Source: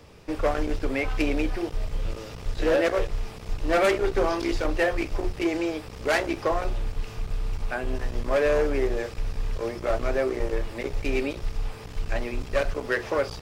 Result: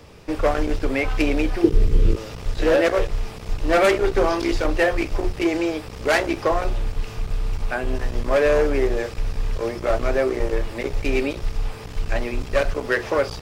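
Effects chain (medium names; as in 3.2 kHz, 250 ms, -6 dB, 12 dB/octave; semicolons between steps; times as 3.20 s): 1.64–2.16 s: resonant low shelf 500 Hz +8 dB, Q 3; trim +4.5 dB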